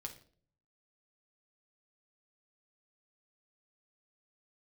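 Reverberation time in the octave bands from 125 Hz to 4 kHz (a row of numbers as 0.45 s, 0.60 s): 0.85 s, 0.70 s, 0.60 s, 0.45 s, 0.40 s, 0.40 s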